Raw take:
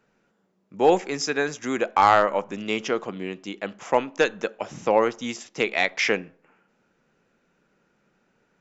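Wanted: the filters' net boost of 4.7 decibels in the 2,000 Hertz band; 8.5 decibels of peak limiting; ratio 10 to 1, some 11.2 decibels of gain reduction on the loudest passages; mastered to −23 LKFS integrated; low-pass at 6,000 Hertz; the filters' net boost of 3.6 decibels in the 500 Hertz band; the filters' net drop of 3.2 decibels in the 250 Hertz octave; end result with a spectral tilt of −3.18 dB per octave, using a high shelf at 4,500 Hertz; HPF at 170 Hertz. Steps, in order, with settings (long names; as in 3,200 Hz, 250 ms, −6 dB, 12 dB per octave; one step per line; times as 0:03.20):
high-pass filter 170 Hz
low-pass filter 6,000 Hz
parametric band 250 Hz −6.5 dB
parametric band 500 Hz +5.5 dB
parametric band 2,000 Hz +6.5 dB
high-shelf EQ 4,500 Hz −5 dB
downward compressor 10 to 1, threshold −21 dBFS
level +7.5 dB
brickwall limiter −9 dBFS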